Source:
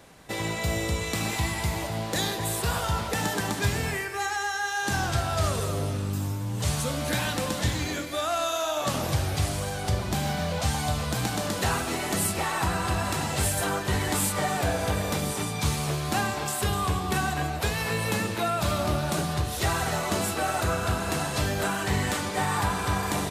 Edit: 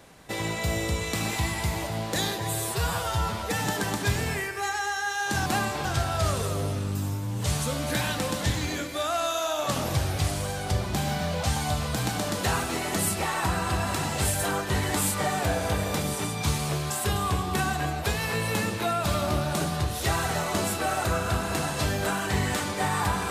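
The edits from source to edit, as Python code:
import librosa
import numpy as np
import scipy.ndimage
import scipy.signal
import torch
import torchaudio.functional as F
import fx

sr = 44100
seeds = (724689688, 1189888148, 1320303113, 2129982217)

y = fx.edit(x, sr, fx.stretch_span(start_s=2.38, length_s=0.86, factor=1.5),
    fx.move(start_s=16.08, length_s=0.39, to_s=5.03), tone=tone)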